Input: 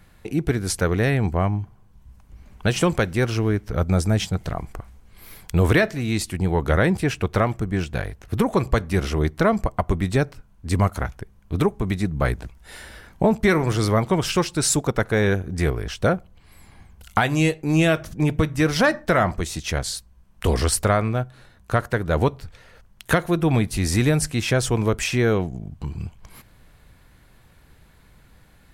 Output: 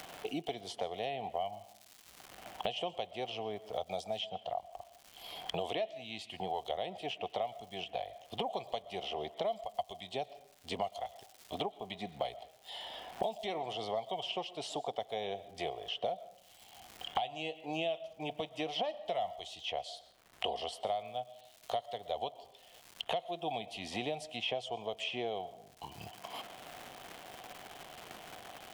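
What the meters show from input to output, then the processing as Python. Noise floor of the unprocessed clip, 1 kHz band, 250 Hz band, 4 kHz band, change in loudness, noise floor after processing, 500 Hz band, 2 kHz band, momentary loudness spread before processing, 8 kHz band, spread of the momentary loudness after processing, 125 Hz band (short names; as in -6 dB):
-53 dBFS, -10.0 dB, -24.0 dB, -7.5 dB, -17.0 dB, -61 dBFS, -14.0 dB, -20.0 dB, 11 LU, -24.5 dB, 12 LU, -31.5 dB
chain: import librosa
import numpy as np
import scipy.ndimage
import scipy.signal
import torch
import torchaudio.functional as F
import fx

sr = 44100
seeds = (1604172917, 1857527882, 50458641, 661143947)

y = fx.double_bandpass(x, sr, hz=1500.0, octaves=2.1)
y = fx.noise_reduce_blind(y, sr, reduce_db=8)
y = fx.dmg_crackle(y, sr, seeds[0], per_s=370.0, level_db=-58.0)
y = fx.rev_freeverb(y, sr, rt60_s=0.54, hf_ratio=0.65, predelay_ms=75, drr_db=18.5)
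y = fx.band_squash(y, sr, depth_pct=100)
y = y * librosa.db_to_amplitude(-2.5)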